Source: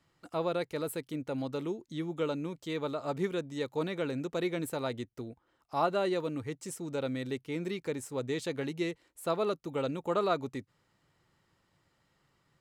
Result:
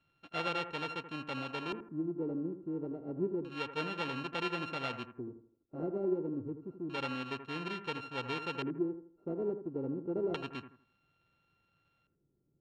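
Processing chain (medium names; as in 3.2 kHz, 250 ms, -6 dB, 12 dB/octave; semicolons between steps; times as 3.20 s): sorted samples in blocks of 32 samples; LFO low-pass square 0.29 Hz 360–3200 Hz; bucket-brigade echo 81 ms, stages 1024, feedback 32%, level -10 dB; trim -5.5 dB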